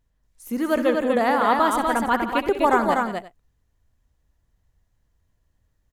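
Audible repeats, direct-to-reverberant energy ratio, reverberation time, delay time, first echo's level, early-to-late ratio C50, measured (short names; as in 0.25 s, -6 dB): 4, none, none, 65 ms, -13.0 dB, none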